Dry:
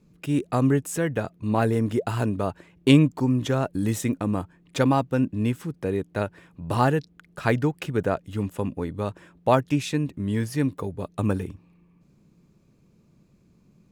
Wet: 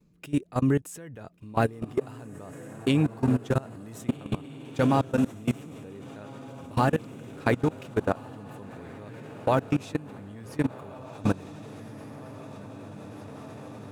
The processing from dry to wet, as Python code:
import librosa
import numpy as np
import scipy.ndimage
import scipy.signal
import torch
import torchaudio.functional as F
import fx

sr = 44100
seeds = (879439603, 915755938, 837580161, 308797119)

y = fx.echo_diffused(x, sr, ms=1548, feedback_pct=60, wet_db=-6)
y = fx.level_steps(y, sr, step_db=21)